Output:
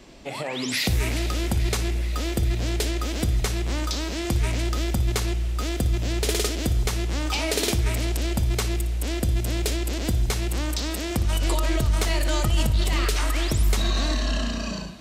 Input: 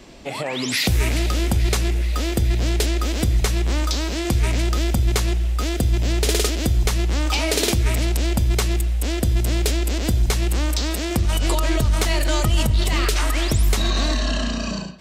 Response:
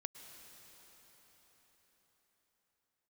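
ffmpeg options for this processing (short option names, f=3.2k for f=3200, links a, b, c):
-filter_complex "[0:a]asplit=2[a][b];[1:a]atrim=start_sample=2205,asetrate=26901,aresample=44100,adelay=59[c];[b][c]afir=irnorm=-1:irlink=0,volume=-12dB[d];[a][d]amix=inputs=2:normalize=0,volume=-4dB"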